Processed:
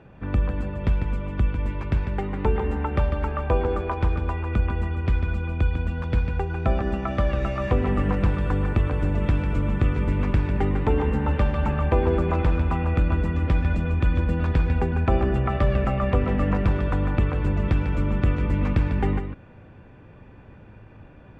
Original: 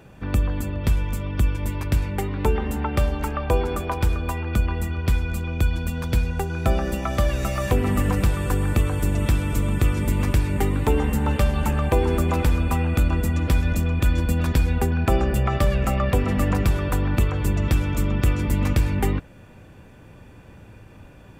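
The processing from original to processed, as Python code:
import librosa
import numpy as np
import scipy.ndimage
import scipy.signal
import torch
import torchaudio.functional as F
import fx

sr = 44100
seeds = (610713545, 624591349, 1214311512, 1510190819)

y = scipy.signal.sosfilt(scipy.signal.butter(2, 2400.0, 'lowpass', fs=sr, output='sos'), x)
y = y + 10.0 ** (-8.0 / 20.0) * np.pad(y, (int(148 * sr / 1000.0), 0))[:len(y)]
y = y * librosa.db_to_amplitude(-1.5)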